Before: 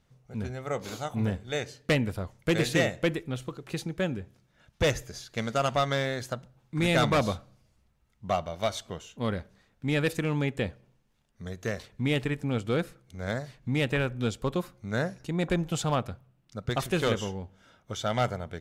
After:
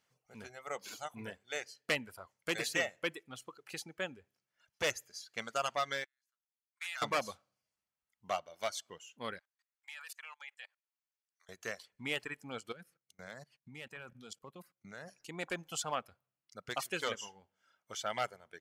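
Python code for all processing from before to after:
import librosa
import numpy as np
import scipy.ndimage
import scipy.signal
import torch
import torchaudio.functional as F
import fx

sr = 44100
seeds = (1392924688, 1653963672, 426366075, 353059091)

y = fx.chain(x, sr, fx.highpass(hz=1100.0, slope=24),
    fx.level_steps(step_db=18),
    fx.upward_expand(threshold_db=-49.0, expansion=2.5), at=(6.04, 7.02))
y = fx.chain(y, sr, fx.highpass(hz=900.0, slope=24),
    fx.level_steps(step_db=22), at=(9.39, 11.49))
y = fx.chain(y, sr, fx.level_steps(step_db=19),
    fx.peak_eq(hz=160.0, db=8.5, octaves=0.97), at=(12.72, 15.08))
y = fx.notch(y, sr, hz=3700.0, q=9.5)
y = fx.dereverb_blind(y, sr, rt60_s=1.4)
y = fx.highpass(y, sr, hz=1200.0, slope=6)
y = y * librosa.db_to_amplitude(-2.0)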